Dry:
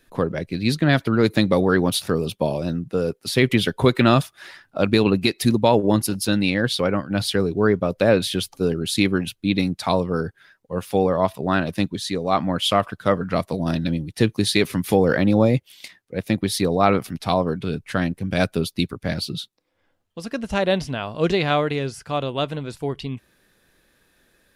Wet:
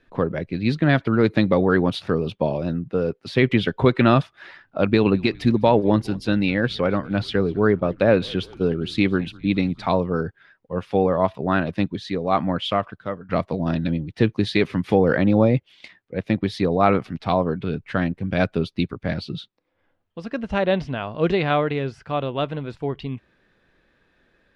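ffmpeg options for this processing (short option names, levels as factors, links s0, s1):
-filter_complex "[0:a]asettb=1/sr,asplit=3[s0][s1][s2];[s0]atrim=end=4.864[s3];[s1]atrim=start=4.86:end=9.86,asetpts=PTS-STARTPTS,afade=t=in:d=0.004:c=qsin,afade=t=out:st=4.996:d=0.004:c=qsin,asplit=5[s4][s5][s6][s7][s8];[s5]adelay=205,afreqshift=-74,volume=0.0631[s9];[s6]adelay=410,afreqshift=-148,volume=0.0367[s10];[s7]adelay=615,afreqshift=-222,volume=0.0211[s11];[s8]adelay=820,afreqshift=-296,volume=0.0123[s12];[s4][s9][s10][s11][s12]amix=inputs=5:normalize=0,atrim=end_sample=220500[s13];[s2]atrim=start=9.856[s14];[s3][s13]acrossfade=d=0.004:c1=hsin:c2=qsin[s15];[s15][s14]acrossfade=d=0.004:c1=qsin:c2=hsin,asplit=2[s16][s17];[s16]atrim=end=13.29,asetpts=PTS-STARTPTS,afade=t=out:st=12.51:d=0.78:silence=0.125893[s18];[s17]atrim=start=13.29,asetpts=PTS-STARTPTS,afade=t=in:d=0.004:c=hsin:silence=0.125893[s19];[s18][s19]concat=n=2:v=0:a=1,lowpass=2900"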